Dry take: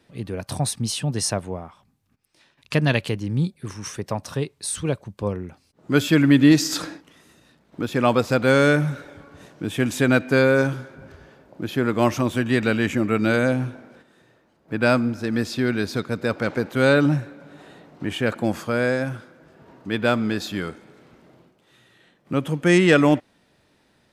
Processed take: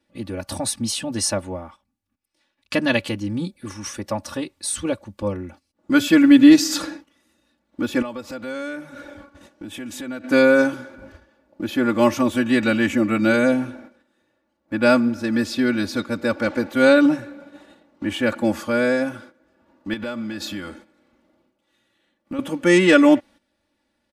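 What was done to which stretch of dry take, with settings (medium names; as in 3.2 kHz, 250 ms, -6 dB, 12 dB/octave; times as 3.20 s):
8.02–10.24 s: compression 3:1, threshold -35 dBFS
19.93–22.39 s: compression, threshold -27 dBFS
whole clip: gate -44 dBFS, range -12 dB; comb 3.5 ms, depth 98%; trim -1 dB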